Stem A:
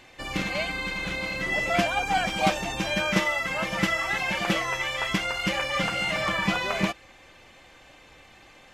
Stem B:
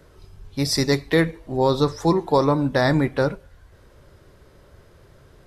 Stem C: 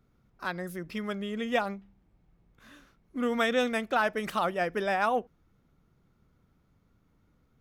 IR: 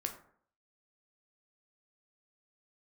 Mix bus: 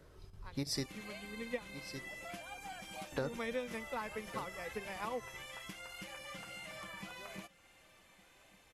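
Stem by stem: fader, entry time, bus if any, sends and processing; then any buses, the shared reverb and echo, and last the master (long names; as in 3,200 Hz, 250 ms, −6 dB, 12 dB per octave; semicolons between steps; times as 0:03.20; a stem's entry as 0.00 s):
−14.5 dB, 0.55 s, no bus, no send, echo send −20.5 dB, parametric band 11,000 Hz +15 dB 0.94 octaves; downward compressor 2.5 to 1, threshold −34 dBFS, peak gain reduction 12 dB
−2.0 dB, 0.00 s, muted 0:00.86–0:03.12, bus A, no send, echo send −21.5 dB, square-wave tremolo 3 Hz, depth 60%, duty 90%; expander for the loud parts 1.5 to 1, over −27 dBFS
−4.0 dB, 0.00 s, bus A, no send, no echo send, EQ curve with evenly spaced ripples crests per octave 0.91, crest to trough 10 dB; expander for the loud parts 2.5 to 1, over −33 dBFS
bus A: 0.0 dB, downward compressor 2.5 to 1, threshold −31 dBFS, peak gain reduction 8 dB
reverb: not used
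echo: single-tap delay 1,158 ms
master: downward compressor 2 to 1, threshold −38 dBFS, peak gain reduction 6.5 dB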